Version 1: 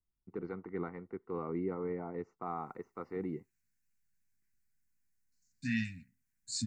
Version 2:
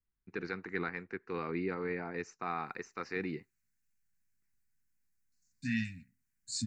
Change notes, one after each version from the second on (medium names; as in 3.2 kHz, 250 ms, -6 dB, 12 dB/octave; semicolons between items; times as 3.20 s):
first voice: remove Savitzky-Golay filter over 65 samples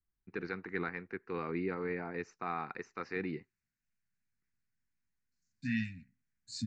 second voice: add high-pass 55 Hz; master: add distance through air 110 m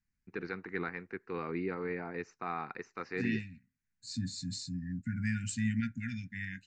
second voice: entry -2.45 s